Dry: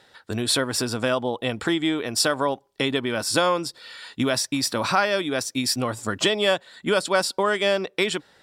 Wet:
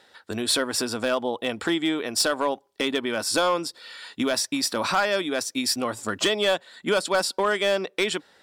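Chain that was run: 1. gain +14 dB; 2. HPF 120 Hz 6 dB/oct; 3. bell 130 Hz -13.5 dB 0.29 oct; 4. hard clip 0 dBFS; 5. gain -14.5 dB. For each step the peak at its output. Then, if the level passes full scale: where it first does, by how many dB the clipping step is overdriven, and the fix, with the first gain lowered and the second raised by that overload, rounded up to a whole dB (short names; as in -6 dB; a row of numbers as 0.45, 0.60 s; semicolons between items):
+6.0, +7.0, +7.5, 0.0, -14.5 dBFS; step 1, 7.5 dB; step 1 +6 dB, step 5 -6.5 dB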